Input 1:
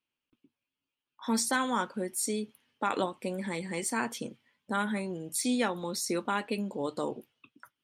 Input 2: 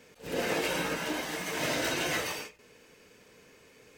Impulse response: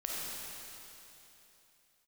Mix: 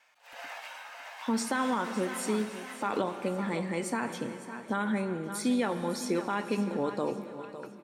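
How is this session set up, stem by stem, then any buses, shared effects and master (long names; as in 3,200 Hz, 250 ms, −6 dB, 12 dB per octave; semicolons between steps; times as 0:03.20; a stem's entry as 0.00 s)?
+1.5 dB, 0.00 s, send −12.5 dB, echo send −12.5 dB, no processing
−1.0 dB, 0.00 s, no send, echo send −10 dB, Butterworth high-pass 680 Hz 48 dB per octave; pitch vibrato 2 Hz 12 cents; automatic ducking −10 dB, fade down 1.05 s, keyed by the first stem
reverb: on, RT60 3.2 s, pre-delay 10 ms
echo: repeating echo 556 ms, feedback 43%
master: high-shelf EQ 3,500 Hz −11 dB; brickwall limiter −19.5 dBFS, peak gain reduction 5.5 dB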